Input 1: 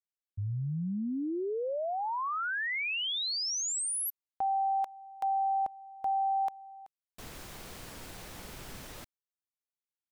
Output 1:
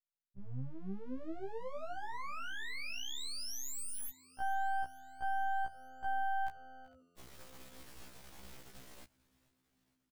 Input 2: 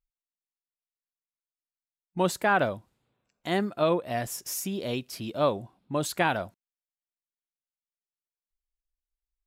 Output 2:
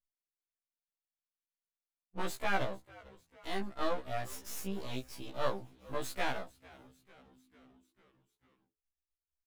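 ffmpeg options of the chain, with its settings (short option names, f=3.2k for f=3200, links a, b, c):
-filter_complex "[0:a]aeval=exprs='max(val(0),0)':c=same,asplit=6[a][b][c][d][e][f];[b]adelay=447,afreqshift=-86,volume=-22dB[g];[c]adelay=894,afreqshift=-172,volume=-26dB[h];[d]adelay=1341,afreqshift=-258,volume=-30dB[i];[e]adelay=1788,afreqshift=-344,volume=-34dB[j];[f]adelay=2235,afreqshift=-430,volume=-38.1dB[k];[a][g][h][i][j][k]amix=inputs=6:normalize=0,afftfilt=real='re*1.73*eq(mod(b,3),0)':imag='im*1.73*eq(mod(b,3),0)':win_size=2048:overlap=0.75,volume=-3.5dB"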